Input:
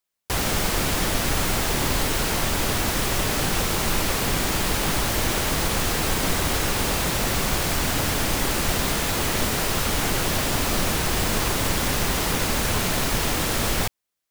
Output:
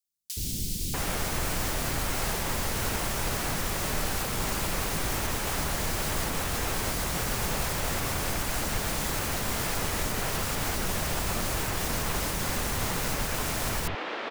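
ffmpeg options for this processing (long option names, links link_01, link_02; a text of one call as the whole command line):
ffmpeg -i in.wav -filter_complex "[0:a]alimiter=limit=-14.5dB:level=0:latency=1:release=169,acrossover=split=300|3500[link_01][link_02][link_03];[link_01]adelay=70[link_04];[link_02]adelay=640[link_05];[link_04][link_05][link_03]amix=inputs=3:normalize=0,volume=-3.5dB" out.wav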